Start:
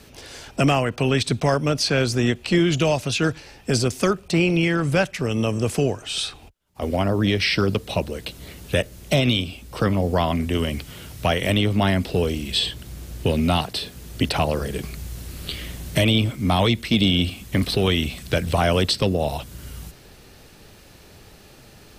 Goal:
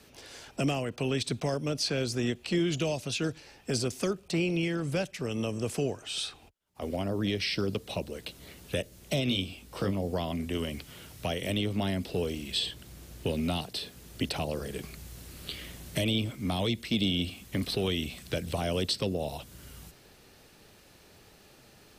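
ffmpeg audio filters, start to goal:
ffmpeg -i in.wav -filter_complex "[0:a]lowshelf=frequency=120:gain=-7.5,acrossover=split=640|2600[link_01][link_02][link_03];[link_02]acompressor=threshold=-35dB:ratio=6[link_04];[link_01][link_04][link_03]amix=inputs=3:normalize=0,asettb=1/sr,asplit=3[link_05][link_06][link_07];[link_05]atrim=end=9.284[link_08];[link_06]atrim=start=9.28:end=9.91,asetpts=PTS-STARTPTS,afade=type=in:duration=0.004:curve=qsin,afade=type=out:start_time=0.626:duration=0.004:curve=qsin,asplit=2[link_09][link_10];[link_10]adelay=21,volume=-5dB[link_11];[link_09][link_11]amix=inputs=2:normalize=0,atrim=end_sample=27783[link_12];[link_07]atrim=start=9.906[link_13];[link_08][link_12]acrossfade=duration=0.004:curve1=hsin:curve2=qsin[link_14];[link_14][link_13]acrossfade=duration=0.004:curve1=qsin:curve2=hsin,volume=-7.5dB" out.wav

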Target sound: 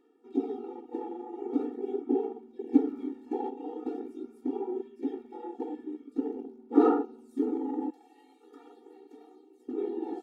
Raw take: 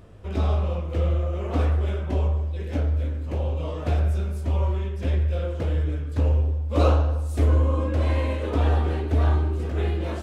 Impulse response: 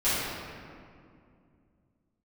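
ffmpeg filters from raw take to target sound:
-filter_complex "[0:a]afwtdn=0.0631,asettb=1/sr,asplit=3[link_01][link_02][link_03];[link_01]atrim=end=2.744[link_04];[link_02]atrim=start=2.74:end=3.5,asetpts=PTS-STARTPTS,afade=type=in:duration=0.004:curve=qsin,afade=type=out:start_time=0.756:duration=0.004:curve=qsin,acontrast=90[link_05];[link_03]atrim=start=3.496[link_06];[link_04][link_05]acrossfade=duration=0.004:curve1=hsin:curve2=qsin[link_07];[link_07][link_06]acrossfade=duration=0.004:curve1=qsin:curve2=hsin,lowshelf=frequency=450:gain=8,asplit=2[link_08][link_09];[link_09]asoftclip=type=tanh:threshold=-24dB,volume=-9dB[link_10];[link_08][link_10]amix=inputs=2:normalize=0,asettb=1/sr,asplit=3[link_11][link_12][link_13];[link_11]atrim=end=7.904[link_14];[link_12]atrim=start=7.9:end=9.69,asetpts=PTS-STARTPTS,afade=type=in:duration=0.004:curve=qsin,afade=type=out:start_time=1.786:duration=0.004:curve=qsin,aderivative[link_15];[link_13]atrim=start=9.686[link_16];[link_14][link_15]acrossfade=duration=0.004:curve1=hsin:curve2=qsin[link_17];[link_17][link_16]acrossfade=duration=0.004:curve1=qsin:curve2=hsin,aphaser=in_gain=1:out_gain=1:delay=1.2:decay=0.38:speed=0.44:type=sinusoidal,afftfilt=real='re*eq(mod(floor(b*sr/1024/240),2),1)':imag='im*eq(mod(floor(b*sr/1024/240),2),1)':win_size=1024:overlap=0.75,volume=-3.5dB"

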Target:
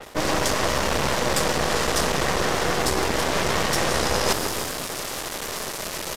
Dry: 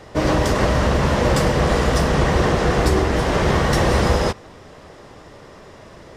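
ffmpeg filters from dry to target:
ffmpeg -i in.wav -filter_complex "[0:a]lowshelf=frequency=250:gain=-11.5,asplit=2[link_01][link_02];[link_02]asplit=4[link_03][link_04][link_05][link_06];[link_03]adelay=176,afreqshift=-83,volume=-18dB[link_07];[link_04]adelay=352,afreqshift=-166,volume=-23.5dB[link_08];[link_05]adelay=528,afreqshift=-249,volume=-29dB[link_09];[link_06]adelay=704,afreqshift=-332,volume=-34.5dB[link_10];[link_07][link_08][link_09][link_10]amix=inputs=4:normalize=0[link_11];[link_01][link_11]amix=inputs=2:normalize=0,acontrast=64,acrusher=bits=5:mix=0:aa=0.000001,areverse,acompressor=threshold=-28dB:ratio=6,areverse,aeval=exprs='0.126*(cos(1*acos(clip(val(0)/0.126,-1,1)))-cos(1*PI/2))+0.0178*(cos(3*acos(clip(val(0)/0.126,-1,1)))-cos(3*PI/2))+0.0282*(cos(6*acos(clip(val(0)/0.126,-1,1)))-cos(6*PI/2))+0.0112*(cos(8*acos(clip(val(0)/0.126,-1,1)))-cos(8*PI/2))':channel_layout=same,aresample=32000,aresample=44100,adynamicequalizer=threshold=0.00282:dfrequency=4000:dqfactor=0.7:tfrequency=4000:tqfactor=0.7:attack=5:release=100:ratio=0.375:range=3:mode=boostabove:tftype=highshelf,volume=8dB" out.wav

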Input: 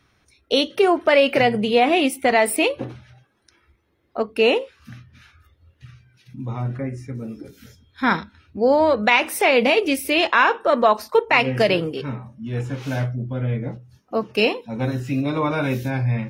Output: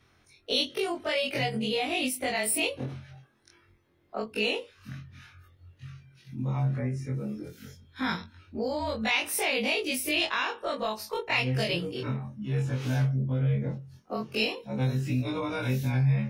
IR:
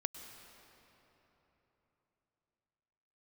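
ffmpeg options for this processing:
-filter_complex "[0:a]afftfilt=real='re':imag='-im':win_size=2048:overlap=0.75,acrossover=split=140|3000[link_01][link_02][link_03];[link_02]acompressor=threshold=-34dB:ratio=4[link_04];[link_01][link_04][link_03]amix=inputs=3:normalize=0,volume=2.5dB"

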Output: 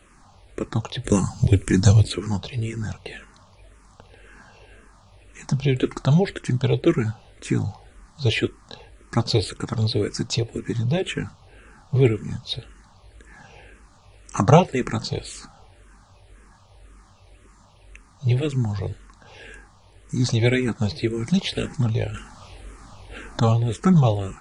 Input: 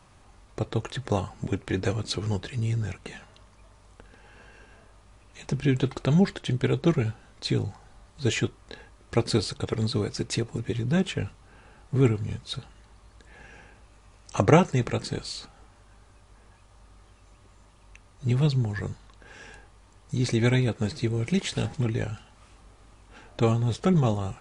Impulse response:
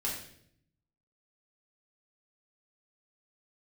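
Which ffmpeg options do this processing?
-filter_complex "[0:a]asettb=1/sr,asplit=3[link_01][link_02][link_03];[link_01]atrim=end=1.044[link_04];[link_02]atrim=start=1.04:end=2.08,asetpts=PTS-STARTPTS,afade=type=in:duration=0.004:curve=qsin,afade=type=out:start_time=1.036:duration=0.004:curve=qsin,bass=frequency=250:gain=11,treble=frequency=4000:gain=14[link_05];[link_03]atrim=start=2.076[link_06];[link_04][link_05]acrossfade=duration=0.004:curve1=hsin:curve2=qsin[link_07];[link_07][link_06]acrossfade=duration=0.004:curve1=qsin:curve2=hsin,asettb=1/sr,asplit=3[link_08][link_09][link_10];[link_08]atrim=end=22.144[link_11];[link_09]atrim=start=22.14:end=23.4,asetpts=PTS-STARTPTS,afade=type=in:duration=0.004:curve=qsin,afade=type=out:start_time=1.256:duration=0.004:curve=qsin,acontrast=80[link_12];[link_10]atrim=start=23.396[link_13];[link_11][link_12]acrossfade=duration=0.004:curve1=hsin:curve2=qsin[link_14];[link_14][link_13]acrossfade=duration=0.004:curve1=qsin:curve2=hsin,asplit=2[link_15][link_16];[link_16]afreqshift=-1.9[link_17];[link_15][link_17]amix=inputs=2:normalize=1,volume=6.5dB"

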